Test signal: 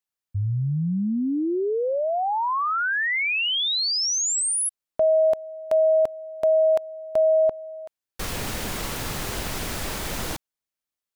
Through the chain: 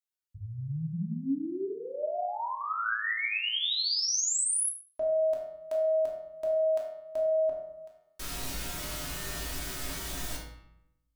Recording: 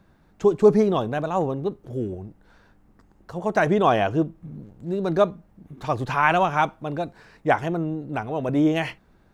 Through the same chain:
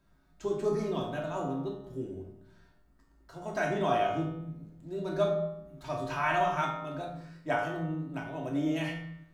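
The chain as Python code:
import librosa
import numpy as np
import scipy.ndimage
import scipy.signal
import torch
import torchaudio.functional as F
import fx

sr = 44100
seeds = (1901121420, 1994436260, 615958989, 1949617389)

y = fx.high_shelf(x, sr, hz=3100.0, db=9.0)
y = fx.comb_fb(y, sr, f0_hz=55.0, decay_s=0.9, harmonics='odd', damping=0.2, mix_pct=90)
y = fx.room_shoebox(y, sr, seeds[0], volume_m3=1000.0, walls='furnished', distance_m=2.8)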